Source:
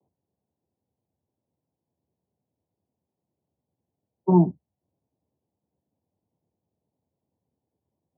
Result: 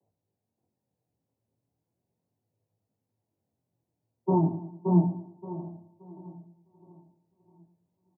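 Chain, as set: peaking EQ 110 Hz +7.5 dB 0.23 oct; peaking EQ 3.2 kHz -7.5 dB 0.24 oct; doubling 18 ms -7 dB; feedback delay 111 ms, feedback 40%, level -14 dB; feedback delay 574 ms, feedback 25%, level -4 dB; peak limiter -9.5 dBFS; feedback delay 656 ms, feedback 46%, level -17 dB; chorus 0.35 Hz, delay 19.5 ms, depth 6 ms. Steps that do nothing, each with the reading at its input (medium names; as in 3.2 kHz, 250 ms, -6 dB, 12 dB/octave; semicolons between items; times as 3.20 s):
peaking EQ 3.2 kHz: input has nothing above 960 Hz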